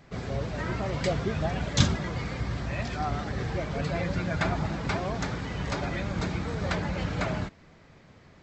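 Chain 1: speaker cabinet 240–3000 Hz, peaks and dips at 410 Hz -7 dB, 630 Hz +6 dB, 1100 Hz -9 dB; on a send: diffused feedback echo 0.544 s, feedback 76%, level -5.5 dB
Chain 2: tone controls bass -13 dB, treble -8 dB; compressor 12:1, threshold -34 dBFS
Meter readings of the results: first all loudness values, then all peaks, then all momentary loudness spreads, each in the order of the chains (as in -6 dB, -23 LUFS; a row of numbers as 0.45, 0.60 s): -32.0, -39.0 LUFS; -14.5, -22.0 dBFS; 5, 3 LU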